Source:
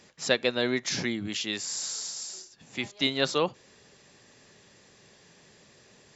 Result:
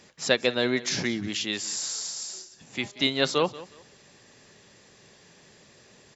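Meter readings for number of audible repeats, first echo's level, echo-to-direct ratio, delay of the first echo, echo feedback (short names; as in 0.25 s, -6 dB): 2, -18.0 dB, -17.5 dB, 0.182 s, 26%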